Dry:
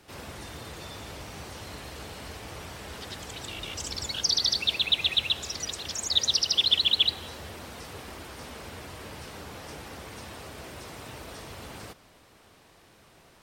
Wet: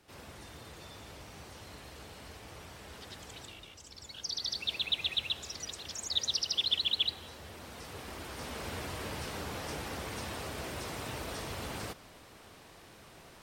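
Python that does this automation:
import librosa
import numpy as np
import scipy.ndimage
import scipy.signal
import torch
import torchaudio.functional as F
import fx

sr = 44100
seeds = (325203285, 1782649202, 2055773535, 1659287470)

y = fx.gain(x, sr, db=fx.line((3.39, -8.0), (3.81, -17.5), (4.76, -7.5), (7.38, -7.5), (8.73, 2.5)))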